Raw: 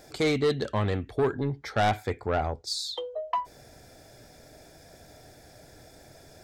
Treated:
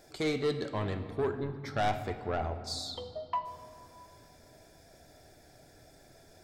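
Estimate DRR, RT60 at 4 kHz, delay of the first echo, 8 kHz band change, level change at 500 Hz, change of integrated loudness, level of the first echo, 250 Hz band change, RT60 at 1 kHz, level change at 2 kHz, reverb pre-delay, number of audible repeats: 8.0 dB, 1.4 s, no echo audible, −6.0 dB, −5.5 dB, −5.5 dB, no echo audible, −5.5 dB, 2.2 s, −6.5 dB, 3 ms, no echo audible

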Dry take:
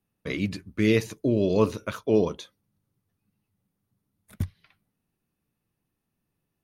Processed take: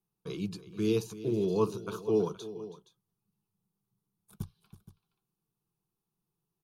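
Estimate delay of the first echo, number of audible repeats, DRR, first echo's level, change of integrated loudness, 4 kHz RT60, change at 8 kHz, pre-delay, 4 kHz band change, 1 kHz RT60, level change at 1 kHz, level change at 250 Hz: 325 ms, 2, no reverb audible, −15.5 dB, −6.0 dB, no reverb audible, −4.5 dB, no reverb audible, −7.5 dB, no reverb audible, −5.0 dB, −7.0 dB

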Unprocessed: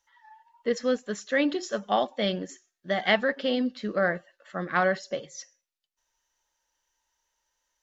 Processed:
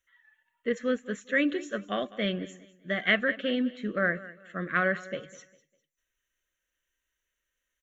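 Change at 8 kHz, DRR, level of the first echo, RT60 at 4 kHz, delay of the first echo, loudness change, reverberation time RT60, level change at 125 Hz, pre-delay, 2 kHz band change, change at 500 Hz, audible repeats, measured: can't be measured, no reverb audible, −18.5 dB, no reverb audible, 201 ms, −2.0 dB, no reverb audible, −0.5 dB, no reverb audible, +1.5 dB, −4.0 dB, 2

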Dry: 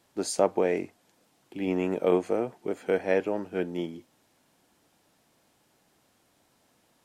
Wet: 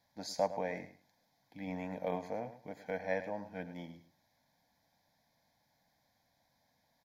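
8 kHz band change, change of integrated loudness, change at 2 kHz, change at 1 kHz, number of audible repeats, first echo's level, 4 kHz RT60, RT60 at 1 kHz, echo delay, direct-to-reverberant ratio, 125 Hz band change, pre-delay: can't be measured, −11.5 dB, −7.5 dB, −6.5 dB, 2, −13.0 dB, no reverb audible, no reverb audible, 107 ms, no reverb audible, −8.0 dB, no reverb audible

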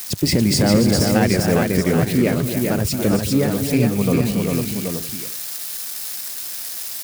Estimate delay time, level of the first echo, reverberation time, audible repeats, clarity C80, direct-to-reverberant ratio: 222 ms, −14.5 dB, no reverb audible, 5, no reverb audible, no reverb audible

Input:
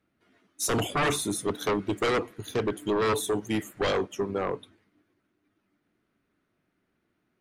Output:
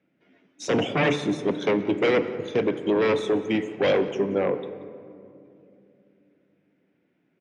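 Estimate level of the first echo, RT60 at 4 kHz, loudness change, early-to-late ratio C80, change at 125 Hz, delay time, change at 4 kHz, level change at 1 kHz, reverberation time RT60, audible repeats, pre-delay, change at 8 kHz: −20.0 dB, 1.1 s, +4.0 dB, 12.5 dB, +2.0 dB, 182 ms, +0.5 dB, −0.5 dB, 2.7 s, 1, 3 ms, below −10 dB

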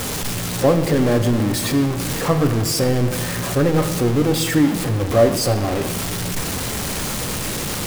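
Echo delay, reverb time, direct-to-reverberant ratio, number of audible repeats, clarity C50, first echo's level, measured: no echo audible, 1.8 s, 7.0 dB, no echo audible, 9.5 dB, no echo audible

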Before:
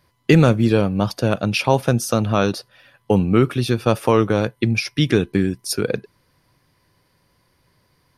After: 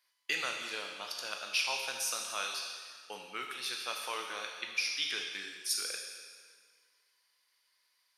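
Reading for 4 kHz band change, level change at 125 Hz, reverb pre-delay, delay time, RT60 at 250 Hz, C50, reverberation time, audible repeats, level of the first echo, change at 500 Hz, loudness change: −5.5 dB, below −40 dB, 5 ms, no echo audible, 1.7 s, 4.0 dB, 1.8 s, no echo audible, no echo audible, −27.5 dB, −16.5 dB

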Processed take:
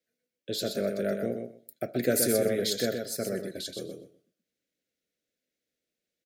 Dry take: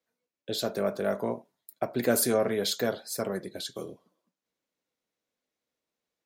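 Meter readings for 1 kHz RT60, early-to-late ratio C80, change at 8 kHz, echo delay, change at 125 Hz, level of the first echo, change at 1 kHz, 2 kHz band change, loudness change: no reverb audible, no reverb audible, +1.0 dB, 125 ms, +1.0 dB, −6.0 dB, −8.0 dB, −1.0 dB, 0.0 dB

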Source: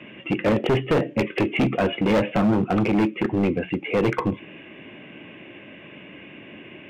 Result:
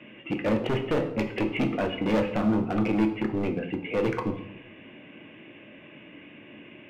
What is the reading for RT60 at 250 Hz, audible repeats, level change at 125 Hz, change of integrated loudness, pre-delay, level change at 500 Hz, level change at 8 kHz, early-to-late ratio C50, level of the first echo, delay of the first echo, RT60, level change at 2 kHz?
0.95 s, no echo audible, −6.0 dB, −5.0 dB, 3 ms, −5.0 dB, can't be measured, 10.5 dB, no echo audible, no echo audible, 0.90 s, −5.5 dB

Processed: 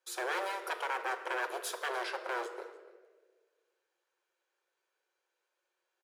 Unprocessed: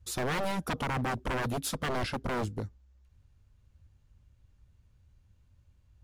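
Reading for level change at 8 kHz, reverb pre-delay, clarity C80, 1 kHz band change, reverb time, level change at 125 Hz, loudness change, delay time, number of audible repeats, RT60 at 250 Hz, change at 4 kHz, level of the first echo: −4.5 dB, 5 ms, 11.5 dB, −1.5 dB, 1.5 s, below −40 dB, −3.0 dB, 293 ms, 1, 1.9 s, −3.5 dB, −21.0 dB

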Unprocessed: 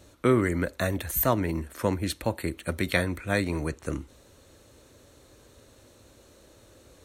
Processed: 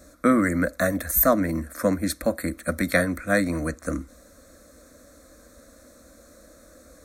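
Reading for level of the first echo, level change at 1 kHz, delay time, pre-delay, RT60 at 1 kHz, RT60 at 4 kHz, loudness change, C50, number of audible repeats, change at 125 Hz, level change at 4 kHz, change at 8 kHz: no echo audible, +4.0 dB, no echo audible, no reverb audible, no reverb audible, no reverb audible, +4.0 dB, no reverb audible, no echo audible, −1.0 dB, −1.5 dB, +6.0 dB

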